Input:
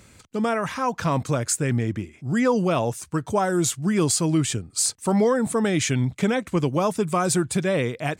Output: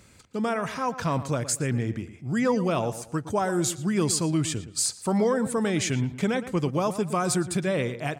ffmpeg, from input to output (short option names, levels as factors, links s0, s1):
-filter_complex "[0:a]equalizer=f=4800:w=6.2:g=2.5,asplit=2[s0][s1];[s1]adelay=115,lowpass=f=2900:p=1,volume=0.224,asplit=2[s2][s3];[s3]adelay=115,lowpass=f=2900:p=1,volume=0.33,asplit=2[s4][s5];[s5]adelay=115,lowpass=f=2900:p=1,volume=0.33[s6];[s0][s2][s4][s6]amix=inputs=4:normalize=0,volume=0.668"